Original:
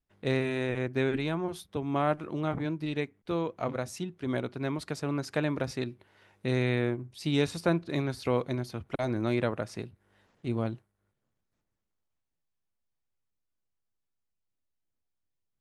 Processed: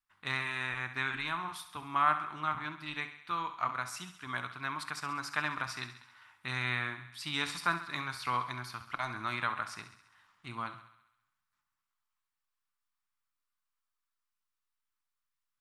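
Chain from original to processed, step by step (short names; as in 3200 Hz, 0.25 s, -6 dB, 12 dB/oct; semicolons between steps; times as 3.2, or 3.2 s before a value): resonant low shelf 750 Hz -14 dB, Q 3; notch 6400 Hz, Q 19; on a send: thinning echo 67 ms, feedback 62%, high-pass 470 Hz, level -11.5 dB; on the sum: shoebox room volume 350 m³, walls furnished, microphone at 0.44 m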